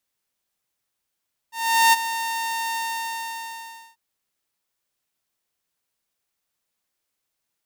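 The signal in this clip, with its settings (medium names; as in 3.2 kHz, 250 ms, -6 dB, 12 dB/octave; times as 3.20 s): ADSR saw 913 Hz, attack 408 ms, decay 24 ms, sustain -12.5 dB, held 1.23 s, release 1210 ms -9.5 dBFS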